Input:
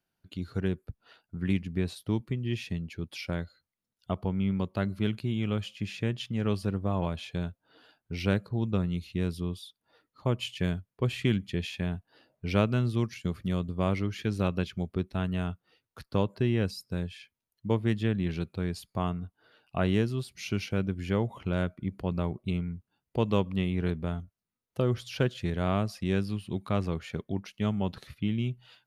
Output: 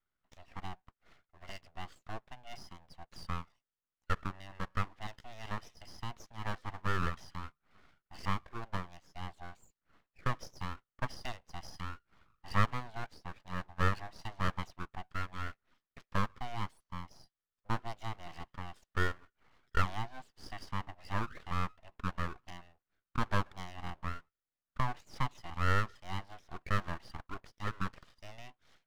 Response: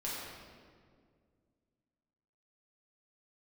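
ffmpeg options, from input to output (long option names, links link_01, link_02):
-filter_complex "[0:a]asplit=3[link_01][link_02][link_03];[link_01]bandpass=frequency=730:width_type=q:width=8,volume=0dB[link_04];[link_02]bandpass=frequency=1090:width_type=q:width=8,volume=-6dB[link_05];[link_03]bandpass=frequency=2440:width_type=q:width=8,volume=-9dB[link_06];[link_04][link_05][link_06]amix=inputs=3:normalize=0,highpass=frequency=330:width=0.5412,highpass=frequency=330:width=1.3066,equalizer=frequency=330:width_type=q:width=4:gain=7,equalizer=frequency=530:width_type=q:width=4:gain=6,equalizer=frequency=2000:width_type=q:width=4:gain=5,equalizer=frequency=2800:width_type=q:width=4:gain=-8,equalizer=frequency=4900:width_type=q:width=4:gain=-9,lowpass=frequency=5800:width=0.5412,lowpass=frequency=5800:width=1.3066,aeval=exprs='abs(val(0))':channel_layout=same,volume=9.5dB"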